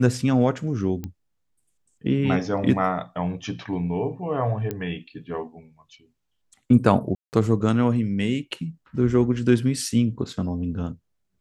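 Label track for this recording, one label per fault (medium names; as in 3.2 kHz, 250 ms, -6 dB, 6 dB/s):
1.040000	1.040000	pop -19 dBFS
4.710000	4.710000	pop -15 dBFS
7.150000	7.330000	dropout 179 ms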